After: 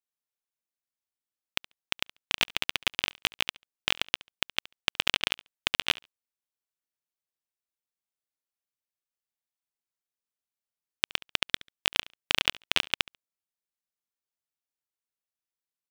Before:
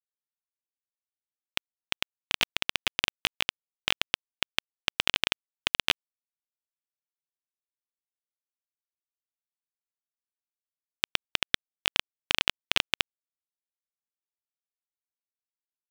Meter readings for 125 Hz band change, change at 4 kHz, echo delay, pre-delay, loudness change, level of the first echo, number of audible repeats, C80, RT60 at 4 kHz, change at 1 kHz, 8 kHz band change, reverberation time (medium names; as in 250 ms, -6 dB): 0.0 dB, 0.0 dB, 70 ms, no reverb, 0.0 dB, -22.5 dB, 1, no reverb, no reverb, 0.0 dB, 0.0 dB, no reverb